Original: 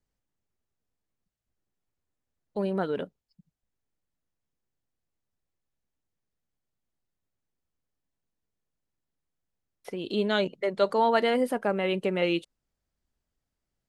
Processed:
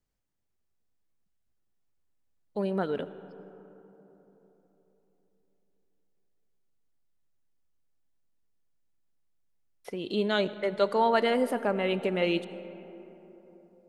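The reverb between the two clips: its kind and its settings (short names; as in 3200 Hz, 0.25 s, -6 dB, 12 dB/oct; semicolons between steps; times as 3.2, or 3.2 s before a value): digital reverb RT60 4 s, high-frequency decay 0.35×, pre-delay 40 ms, DRR 14 dB; gain -1 dB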